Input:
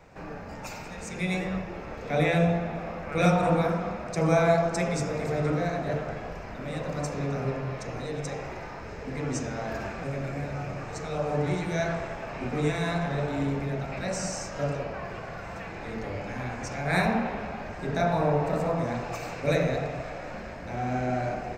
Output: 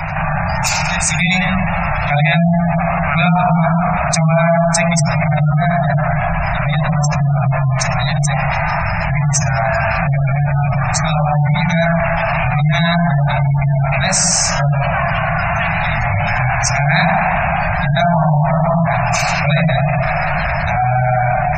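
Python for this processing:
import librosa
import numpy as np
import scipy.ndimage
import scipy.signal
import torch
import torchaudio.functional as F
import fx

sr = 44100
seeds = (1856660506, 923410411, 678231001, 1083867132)

p1 = scipy.signal.sosfilt(scipy.signal.ellip(3, 1.0, 40, [160.0, 680.0], 'bandstop', fs=sr, output='sos'), x)
p2 = fx.peak_eq(p1, sr, hz=180.0, db=5.0, octaves=1.3)
p3 = fx.hum_notches(p2, sr, base_hz=60, count=10)
p4 = 10.0 ** (-23.0 / 20.0) * np.tanh(p3 / 10.0 ** (-23.0 / 20.0))
p5 = p3 + (p4 * librosa.db_to_amplitude(-3.5))
p6 = fx.spec_gate(p5, sr, threshold_db=-25, keep='strong')
p7 = fx.high_shelf(p6, sr, hz=3400.0, db=9.5)
p8 = fx.env_flatten(p7, sr, amount_pct=70)
y = p8 * librosa.db_to_amplitude(5.0)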